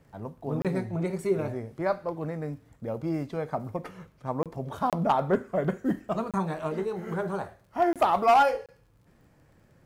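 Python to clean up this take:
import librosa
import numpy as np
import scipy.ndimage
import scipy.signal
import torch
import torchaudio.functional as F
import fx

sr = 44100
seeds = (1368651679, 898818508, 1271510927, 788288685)

y = fx.fix_declip(x, sr, threshold_db=-14.5)
y = fx.fix_declick_ar(y, sr, threshold=6.5)
y = fx.fix_interpolate(y, sr, at_s=(0.62, 4.43, 4.9, 6.31, 7.93, 8.66), length_ms=27.0)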